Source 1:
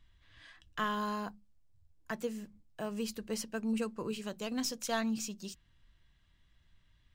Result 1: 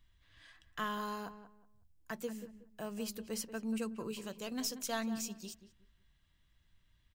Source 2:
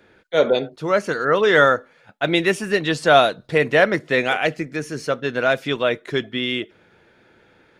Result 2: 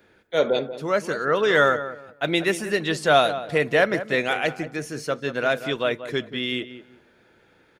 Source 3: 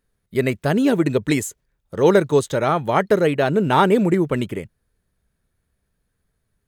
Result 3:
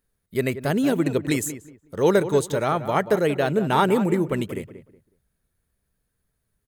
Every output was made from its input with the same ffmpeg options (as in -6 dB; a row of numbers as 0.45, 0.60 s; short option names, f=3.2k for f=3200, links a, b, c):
-filter_complex "[0:a]highshelf=f=8.8k:g=9,asplit=2[a][b];[b]adelay=184,lowpass=f=1.7k:p=1,volume=-11.5dB,asplit=2[c][d];[d]adelay=184,lowpass=f=1.7k:p=1,volume=0.26,asplit=2[e][f];[f]adelay=184,lowpass=f=1.7k:p=1,volume=0.26[g];[c][e][g]amix=inputs=3:normalize=0[h];[a][h]amix=inputs=2:normalize=0,volume=-4dB"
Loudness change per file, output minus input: -3.0, -3.5, -3.5 LU